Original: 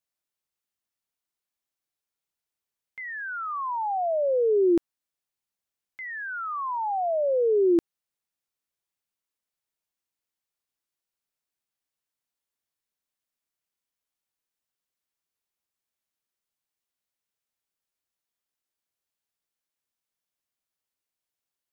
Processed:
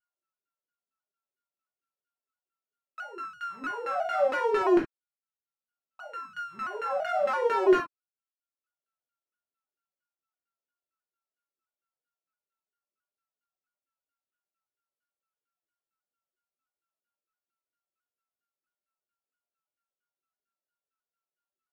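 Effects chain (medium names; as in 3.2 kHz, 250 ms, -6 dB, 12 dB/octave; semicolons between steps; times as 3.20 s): sorted samples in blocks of 32 samples; reverb removal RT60 0.71 s; LFO band-pass saw down 4.4 Hz 290–1800 Hz; reverberation, pre-delay 5 ms, DRR -2.5 dB; vibrato with a chosen wave saw down 3 Hz, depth 100 cents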